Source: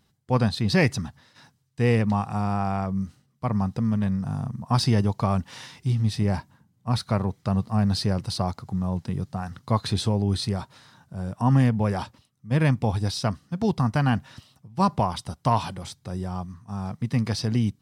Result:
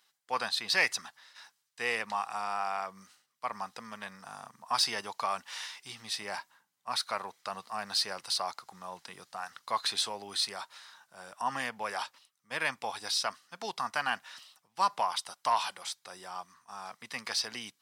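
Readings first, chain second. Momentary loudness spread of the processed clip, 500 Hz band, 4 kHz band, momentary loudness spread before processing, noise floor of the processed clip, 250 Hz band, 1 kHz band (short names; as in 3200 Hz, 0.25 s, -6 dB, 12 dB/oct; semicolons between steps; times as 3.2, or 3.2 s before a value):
16 LU, -11.5 dB, +1.5 dB, 12 LU, -77 dBFS, -26.0 dB, -3.5 dB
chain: HPF 1100 Hz 12 dB/oct; in parallel at -6 dB: soft clip -25 dBFS, distortion -12 dB; on the sum: gain -1.5 dB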